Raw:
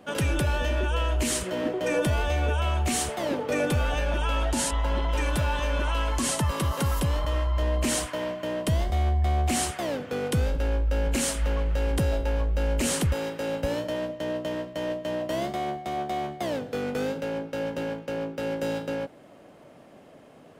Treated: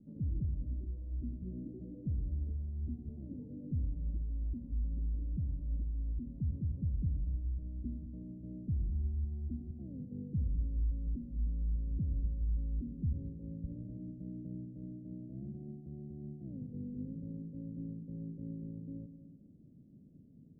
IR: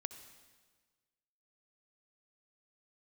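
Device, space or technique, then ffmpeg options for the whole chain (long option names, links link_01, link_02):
club heard from the street: -filter_complex "[0:a]alimiter=level_in=2dB:limit=-24dB:level=0:latency=1:release=123,volume=-2dB,lowpass=frequency=230:width=0.5412,lowpass=frequency=230:width=1.3066[link_01];[1:a]atrim=start_sample=2205[link_02];[link_01][link_02]afir=irnorm=-1:irlink=0,volume=2.5dB"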